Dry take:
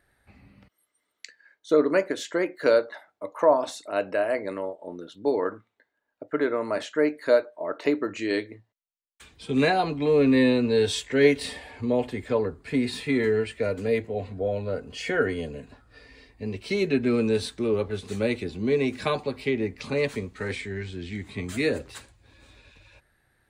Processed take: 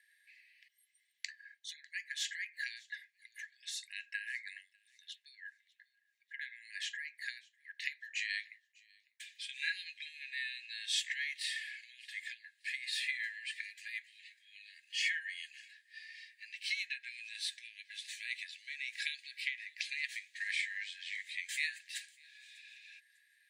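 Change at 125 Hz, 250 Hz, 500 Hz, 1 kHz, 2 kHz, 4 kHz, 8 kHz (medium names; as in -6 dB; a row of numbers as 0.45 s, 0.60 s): under -40 dB, under -40 dB, under -40 dB, under -40 dB, -5.0 dB, -3.0 dB, -3.0 dB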